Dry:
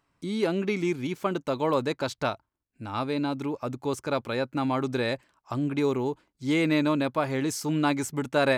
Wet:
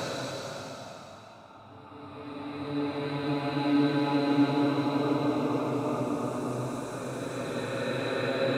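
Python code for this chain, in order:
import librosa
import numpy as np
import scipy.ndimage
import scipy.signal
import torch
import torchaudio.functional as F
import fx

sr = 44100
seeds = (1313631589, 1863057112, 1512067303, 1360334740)

y = fx.auto_swell(x, sr, attack_ms=280.0)
y = fx.paulstretch(y, sr, seeds[0], factor=4.1, window_s=1.0, from_s=2.24)
y = y * 10.0 ** (4.0 / 20.0)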